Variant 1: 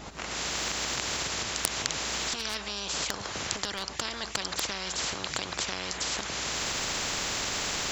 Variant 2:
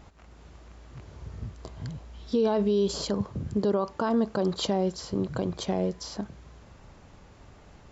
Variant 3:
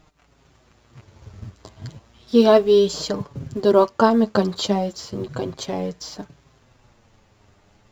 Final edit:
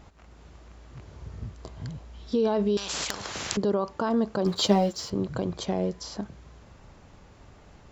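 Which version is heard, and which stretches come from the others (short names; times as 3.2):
2
2.77–3.57 from 1
4.46–5.1 from 3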